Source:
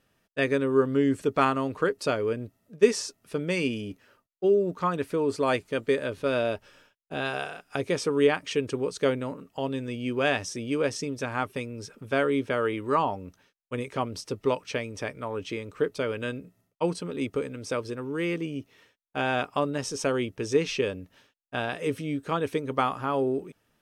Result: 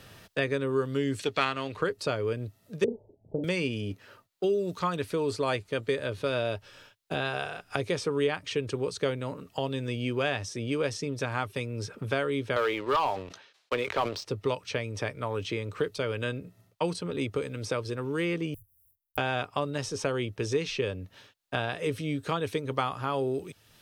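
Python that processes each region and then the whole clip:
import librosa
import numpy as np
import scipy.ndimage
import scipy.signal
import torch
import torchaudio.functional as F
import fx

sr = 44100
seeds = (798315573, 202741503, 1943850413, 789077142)

y = fx.chain(x, sr, fx.halfwave_gain(db=-3.0),
    fx.weighting(curve='D'), at=(1.19, 1.77))
y = fx.chain(y, sr, fx.cheby_ripple(hz=860.0, ripple_db=3),
    fx.doubler(ms=38.0, db=-5.0), at=(2.84, 3.44))
y = fx.chain(y, sr, fx.bandpass_edges(low_hz=420.0, high_hz=4600.0),
    fx.leveller(passes=2),
    fx.sustainer(db_per_s=110.0), at=(12.56, 14.25))
y = fx.chain(y, sr, fx.block_float(bits=3),
    fx.cheby2_bandstop(low_hz=220.0, high_hz=4300.0, order=4, stop_db=60), at=(18.54, 19.18))
y = fx.graphic_eq_15(y, sr, hz=(100, 250, 4000), db=(9, -4, 5))
y = fx.band_squash(y, sr, depth_pct=70)
y = F.gain(torch.from_numpy(y), -3.0).numpy()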